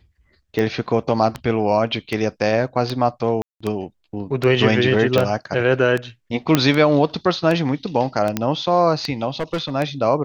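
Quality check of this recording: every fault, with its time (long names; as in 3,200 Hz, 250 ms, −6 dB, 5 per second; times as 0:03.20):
scratch tick 78 rpm −10 dBFS
0:03.42–0:03.60: drop-out 185 ms
0:05.18: click −6 dBFS
0:06.55: click 0 dBFS
0:08.37: click −6 dBFS
0:09.30–0:09.70: clipping −18.5 dBFS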